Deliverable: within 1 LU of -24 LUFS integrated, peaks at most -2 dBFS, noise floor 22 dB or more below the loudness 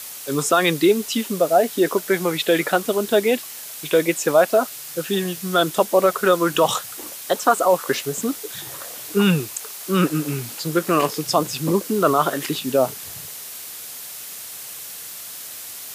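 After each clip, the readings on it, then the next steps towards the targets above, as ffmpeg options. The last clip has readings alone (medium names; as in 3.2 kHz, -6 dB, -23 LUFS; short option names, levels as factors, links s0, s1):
noise floor -35 dBFS; noise floor target -43 dBFS; loudness -20.5 LUFS; peak level -3.0 dBFS; loudness target -24.0 LUFS
-> -af "afftdn=nr=8:nf=-35"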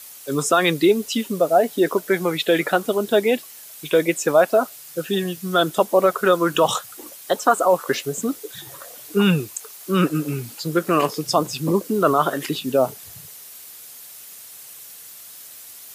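noise floor -41 dBFS; noise floor target -43 dBFS
-> -af "afftdn=nr=6:nf=-41"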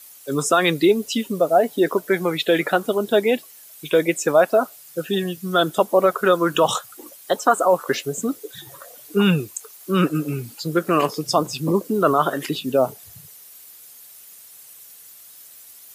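noise floor -45 dBFS; loudness -20.5 LUFS; peak level -3.5 dBFS; loudness target -24.0 LUFS
-> -af "volume=0.668"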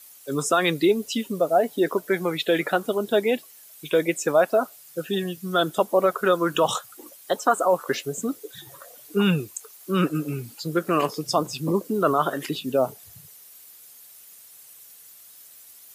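loudness -24.0 LUFS; peak level -7.0 dBFS; noise floor -49 dBFS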